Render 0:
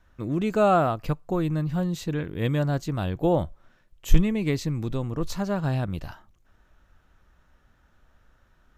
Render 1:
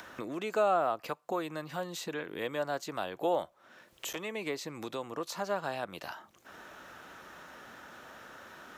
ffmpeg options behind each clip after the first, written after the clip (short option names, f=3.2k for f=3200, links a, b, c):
-filter_complex "[0:a]acrossover=split=490|1300[a][b][c];[a]acompressor=threshold=-38dB:ratio=4[d];[b]acompressor=threshold=-26dB:ratio=4[e];[c]acompressor=threshold=-40dB:ratio=4[f];[d][e][f]amix=inputs=3:normalize=0,highpass=300,acompressor=mode=upward:threshold=-34dB:ratio=2.5"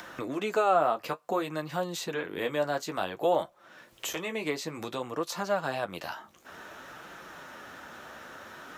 -af "flanger=delay=5.7:depth=7.7:regen=-38:speed=0.56:shape=sinusoidal,volume=8dB"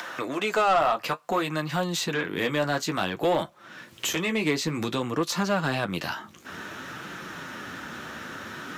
-filter_complex "[0:a]asubboost=boost=10:cutoff=210,highpass=86,asplit=2[a][b];[b]highpass=f=720:p=1,volume=15dB,asoftclip=type=tanh:threshold=-13.5dB[c];[a][c]amix=inputs=2:normalize=0,lowpass=f=7.1k:p=1,volume=-6dB"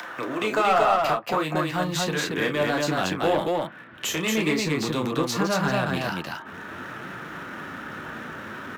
-filter_complex "[0:a]acrossover=split=600|2800[a][b][c];[c]aeval=exprs='sgn(val(0))*max(abs(val(0))-0.00335,0)':c=same[d];[a][b][d]amix=inputs=3:normalize=0,aecho=1:1:32.07|230.3:0.447|0.794"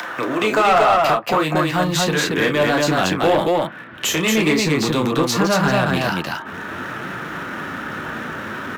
-af "asoftclip=type=tanh:threshold=-16dB,volume=8dB"